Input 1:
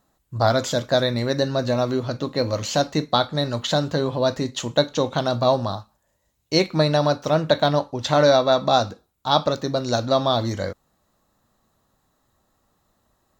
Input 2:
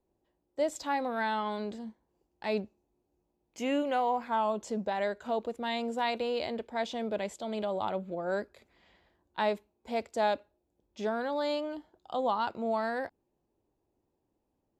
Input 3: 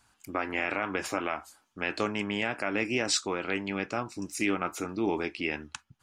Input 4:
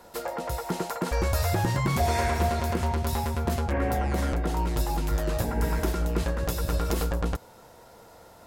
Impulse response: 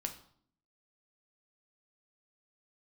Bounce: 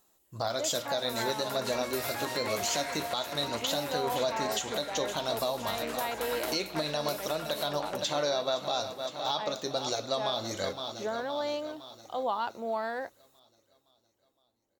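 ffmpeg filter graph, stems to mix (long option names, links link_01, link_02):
-filter_complex "[0:a]aexciter=amount=2.9:drive=2.4:freq=2400,flanger=delay=2.3:depth=2.6:regen=80:speed=1.5:shape=sinusoidal,volume=-4dB,asplit=3[link_01][link_02][link_03];[link_02]volume=-4.5dB[link_04];[link_03]volume=-10dB[link_05];[1:a]volume=-1dB[link_06];[2:a]adelay=1400,volume=-12.5dB[link_07];[3:a]acrossover=split=480 3000:gain=0.224 1 0.251[link_08][link_09][link_10];[link_08][link_09][link_10]amix=inputs=3:normalize=0,crystalizer=i=8.5:c=0,adelay=600,volume=-7.5dB[link_11];[4:a]atrim=start_sample=2205[link_12];[link_04][link_12]afir=irnorm=-1:irlink=0[link_13];[link_05]aecho=0:1:514|1028|1542|2056|2570|3084|3598|4112:1|0.55|0.303|0.166|0.0915|0.0503|0.0277|0.0152[link_14];[link_01][link_06][link_07][link_11][link_13][link_14]amix=inputs=6:normalize=0,bass=frequency=250:gain=-9,treble=frequency=4000:gain=-1,alimiter=limit=-19.5dB:level=0:latency=1:release=311"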